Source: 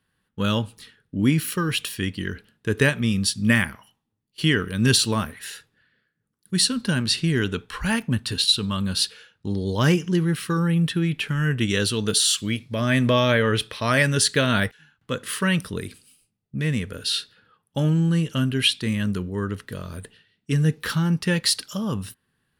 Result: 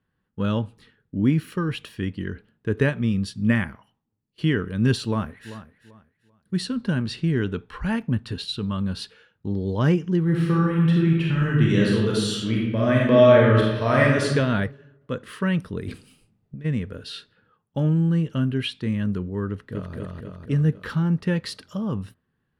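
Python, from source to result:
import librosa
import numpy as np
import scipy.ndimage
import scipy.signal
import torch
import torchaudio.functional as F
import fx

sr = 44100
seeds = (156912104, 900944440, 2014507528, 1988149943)

y = fx.echo_throw(x, sr, start_s=5.04, length_s=0.47, ms=390, feedback_pct=25, wet_db=-14.0)
y = fx.reverb_throw(y, sr, start_s=10.23, length_s=4.02, rt60_s=1.1, drr_db=-3.5)
y = fx.over_compress(y, sr, threshold_db=-38.0, ratio=-1.0, at=(15.86, 16.64), fade=0.02)
y = fx.echo_throw(y, sr, start_s=19.49, length_s=0.46, ms=250, feedback_pct=60, wet_db=-0.5)
y = fx.lowpass(y, sr, hz=1000.0, slope=6)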